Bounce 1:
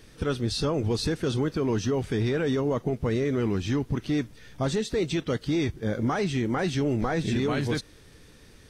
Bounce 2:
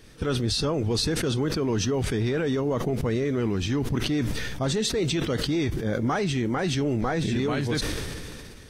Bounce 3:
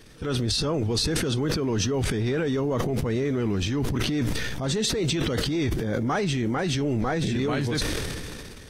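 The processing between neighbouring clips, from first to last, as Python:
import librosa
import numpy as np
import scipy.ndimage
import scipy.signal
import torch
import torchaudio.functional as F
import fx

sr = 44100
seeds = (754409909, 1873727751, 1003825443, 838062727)

y1 = fx.sustainer(x, sr, db_per_s=24.0)
y2 = fx.transient(y1, sr, attack_db=-6, sustain_db=9)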